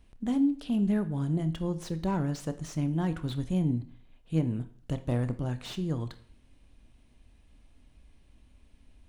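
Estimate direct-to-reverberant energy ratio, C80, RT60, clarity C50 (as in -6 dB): 11.0 dB, 19.0 dB, 0.55 s, 15.5 dB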